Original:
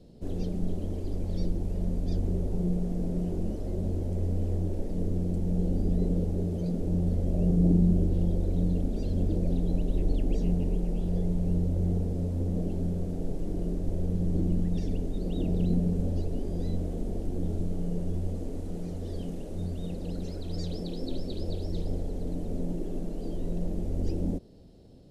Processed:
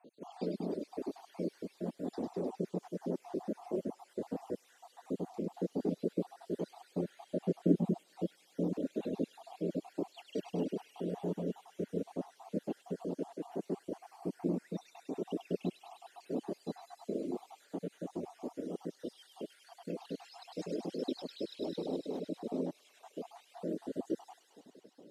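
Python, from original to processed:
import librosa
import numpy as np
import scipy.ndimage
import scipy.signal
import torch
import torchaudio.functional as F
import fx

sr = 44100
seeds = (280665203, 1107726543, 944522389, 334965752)

p1 = fx.spec_dropout(x, sr, seeds[0], share_pct=65)
p2 = scipy.signal.sosfilt(scipy.signal.butter(4, 240.0, 'highpass', fs=sr, output='sos'), p1)
p3 = fx.high_shelf(p2, sr, hz=3700.0, db=-8.5)
p4 = p3 + fx.echo_wet_highpass(p3, sr, ms=102, feedback_pct=82, hz=2000.0, wet_db=-3.5, dry=0)
p5 = fx.dereverb_blind(p4, sr, rt60_s=0.62)
p6 = fx.peak_eq(p5, sr, hz=1000.0, db=6.0, octaves=0.79)
y = p6 * librosa.db_to_amplitude(4.0)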